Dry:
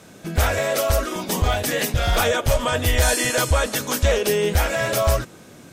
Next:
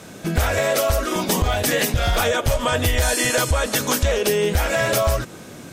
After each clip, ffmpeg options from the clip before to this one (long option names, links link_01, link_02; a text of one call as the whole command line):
ffmpeg -i in.wav -af "acompressor=threshold=-22dB:ratio=6,volume=6dB" out.wav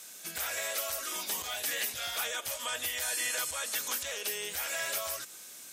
ffmpeg -i in.wav -filter_complex "[0:a]acrossover=split=3100[link_01][link_02];[link_02]acompressor=threshold=-33dB:ratio=4:attack=1:release=60[link_03];[link_01][link_03]amix=inputs=2:normalize=0,aderivative" out.wav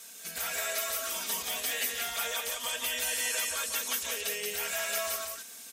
ffmpeg -i in.wav -filter_complex "[0:a]aecho=1:1:4.4:0.79,asplit=2[link_01][link_02];[link_02]aecho=0:1:178:0.668[link_03];[link_01][link_03]amix=inputs=2:normalize=0,volume=-2dB" out.wav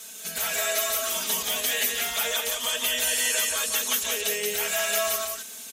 ffmpeg -i in.wav -af "aecho=1:1:4.7:0.49,volume=5.5dB" out.wav